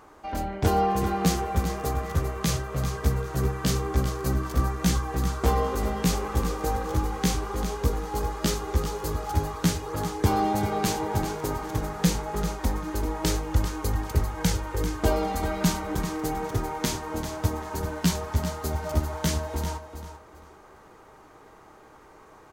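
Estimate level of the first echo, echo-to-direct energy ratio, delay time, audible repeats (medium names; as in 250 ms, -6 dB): -10.0 dB, -10.0 dB, 393 ms, 2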